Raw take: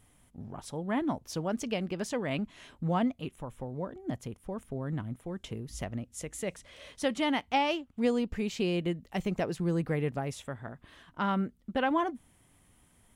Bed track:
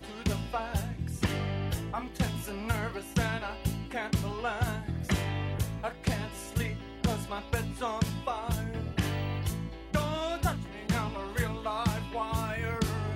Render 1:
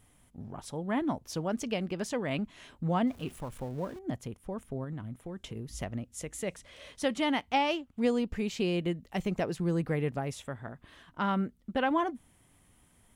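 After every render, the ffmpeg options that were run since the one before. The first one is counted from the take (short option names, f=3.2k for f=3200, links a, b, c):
-filter_complex "[0:a]asettb=1/sr,asplit=3[a][b][c];[a]atrim=end=3.074[d];[b]atrim=start=3.07:end=3.99,asetpts=PTS-STARTPTS,afade=t=in:d=0.004:c=qsin,afade=t=out:st=0.916:d=0.004:c=qsin,aeval=exprs='val(0)+0.5*0.00447*sgn(val(0))':c=same[e];[c]atrim=start=3.986[f];[d][e]acrossfade=d=0.004:c1=hsin:c2=qsin[g];[g][f]acrossfade=d=0.004:c1=qsin:c2=hsin,asettb=1/sr,asplit=3[h][i][j];[h]atrim=end=4.844[k];[i]atrim=start=4.84:end=5.56,asetpts=PTS-STARTPTS,afade=t=in:d=0.004:c=qsin,afade=t=out:st=0.716:d=0.004:c=qsin,acompressor=threshold=-35dB:ratio=4:attack=3.2:release=140:knee=1:detection=peak[l];[j]atrim=start=5.556[m];[k][l]acrossfade=d=0.004:c1=hsin:c2=qsin[n];[n][m]acrossfade=d=0.004:c1=qsin:c2=hsin"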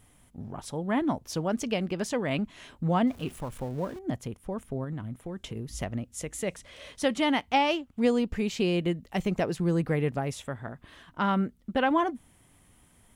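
-af "volume=3.5dB"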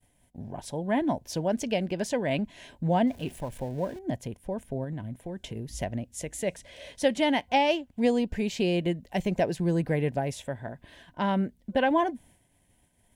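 -af "agate=range=-33dB:threshold=-53dB:ratio=3:detection=peak,superequalizer=8b=1.58:10b=0.282"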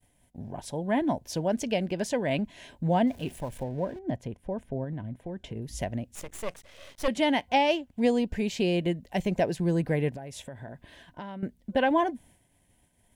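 -filter_complex "[0:a]asettb=1/sr,asplit=3[a][b][c];[a]atrim=end=3.634[d];[b]atrim=start=3.63:end=5.62,asetpts=PTS-STARTPTS,afade=t=in:d=0.004:c=qsin,afade=t=out:st=1.986:d=0.004:c=qsin,lowpass=f=2.5k:p=1[e];[c]atrim=start=5.616[f];[d][e]acrossfade=d=0.004:c1=hsin:c2=qsin[g];[g][f]acrossfade=d=0.004:c1=qsin:c2=hsin,asettb=1/sr,asplit=3[h][i][j];[h]atrim=end=6.154[k];[i]atrim=start=6.15:end=7.08,asetpts=PTS-STARTPTS,afade=t=in:d=0.004:c=qsin,afade=t=out:st=0.926:d=0.004:c=qsin,aeval=exprs='max(val(0),0)':c=same[l];[j]atrim=start=7.076[m];[k][l]acrossfade=d=0.004:c1=hsin:c2=qsin[n];[n][m]acrossfade=d=0.004:c1=qsin:c2=hsin,asettb=1/sr,asplit=3[o][p][q];[o]atrim=end=10.094[r];[p]atrim=start=10.09:end=11.43,asetpts=PTS-STARTPTS,afade=t=in:d=0.004:c=qsin,afade=t=out:st=1.336:d=0.004:c=qsin,acompressor=threshold=-35dB:ratio=16:attack=3.2:release=140:knee=1:detection=peak[s];[q]atrim=start=11.426[t];[r][s]acrossfade=d=0.004:c1=hsin:c2=qsin[u];[u][t]acrossfade=d=0.004:c1=qsin:c2=hsin"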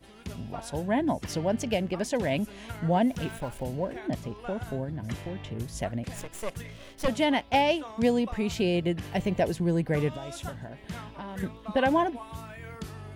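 -filter_complex "[1:a]volume=-9.5dB[a];[0:a][a]amix=inputs=2:normalize=0"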